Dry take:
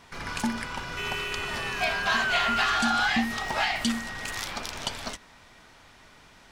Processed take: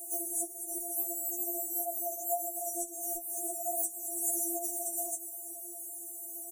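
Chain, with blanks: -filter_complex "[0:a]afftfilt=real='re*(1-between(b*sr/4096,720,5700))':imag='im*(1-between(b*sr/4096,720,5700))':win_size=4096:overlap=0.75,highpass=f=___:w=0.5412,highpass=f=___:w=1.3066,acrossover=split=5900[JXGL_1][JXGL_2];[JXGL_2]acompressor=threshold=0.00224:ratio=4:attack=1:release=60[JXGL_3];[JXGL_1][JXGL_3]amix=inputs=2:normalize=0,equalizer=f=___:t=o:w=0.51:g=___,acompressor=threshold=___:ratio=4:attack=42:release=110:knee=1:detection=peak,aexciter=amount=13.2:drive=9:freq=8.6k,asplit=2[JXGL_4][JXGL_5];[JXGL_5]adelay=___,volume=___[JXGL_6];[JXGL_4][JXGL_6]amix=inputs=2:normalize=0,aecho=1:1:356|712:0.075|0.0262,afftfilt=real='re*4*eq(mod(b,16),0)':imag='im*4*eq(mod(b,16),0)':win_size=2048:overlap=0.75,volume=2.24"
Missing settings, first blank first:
40, 40, 2.5k, 15, 0.00447, 21, 0.251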